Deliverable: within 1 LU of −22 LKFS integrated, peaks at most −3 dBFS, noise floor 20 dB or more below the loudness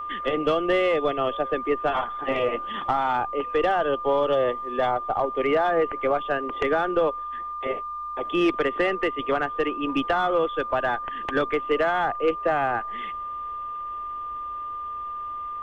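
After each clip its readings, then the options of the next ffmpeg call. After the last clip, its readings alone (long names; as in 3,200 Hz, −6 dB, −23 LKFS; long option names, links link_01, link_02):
interfering tone 1,200 Hz; level of the tone −30 dBFS; integrated loudness −25.5 LKFS; sample peak −12.0 dBFS; target loudness −22.0 LKFS
→ -af "bandreject=frequency=1200:width=30"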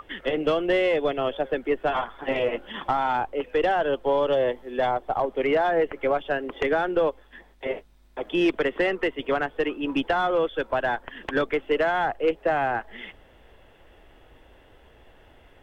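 interfering tone none found; integrated loudness −25.5 LKFS; sample peak −12.5 dBFS; target loudness −22.0 LKFS
→ -af "volume=3.5dB"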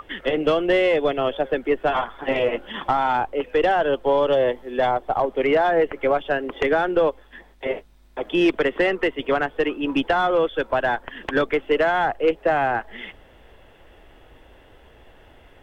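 integrated loudness −22.0 LKFS; sample peak −9.0 dBFS; background noise floor −51 dBFS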